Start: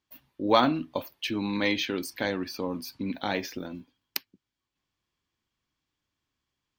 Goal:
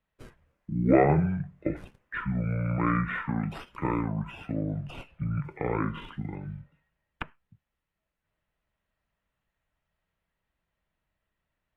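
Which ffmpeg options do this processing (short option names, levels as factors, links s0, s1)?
-filter_complex "[0:a]acrossover=split=330|6800[s0][s1][s2];[s2]acrusher=samples=24:mix=1:aa=0.000001:lfo=1:lforange=38.4:lforate=0.32[s3];[s0][s1][s3]amix=inputs=3:normalize=0,acrossover=split=3700[s4][s5];[s5]acompressor=threshold=0.00316:ratio=4:attack=1:release=60[s6];[s4][s6]amix=inputs=2:normalize=0,lowshelf=f=97:g=8,asetrate=25442,aresample=44100" -ar 48000 -c:a libopus -b:a 48k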